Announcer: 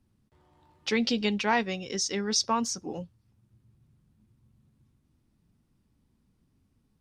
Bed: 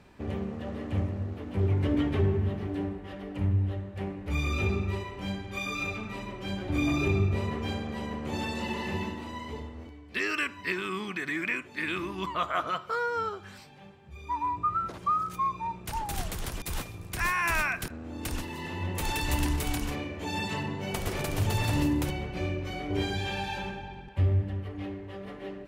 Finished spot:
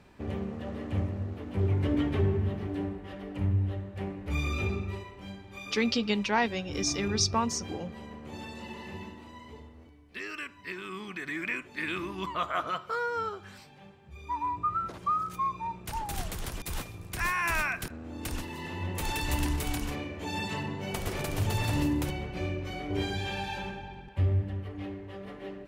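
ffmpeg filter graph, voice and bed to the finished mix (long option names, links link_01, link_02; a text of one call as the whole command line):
ffmpeg -i stem1.wav -i stem2.wav -filter_complex "[0:a]adelay=4850,volume=-1dB[link_01];[1:a]volume=6.5dB,afade=type=out:start_time=4.39:duration=0.88:silence=0.398107,afade=type=in:start_time=10.62:duration=1.06:silence=0.421697[link_02];[link_01][link_02]amix=inputs=2:normalize=0" out.wav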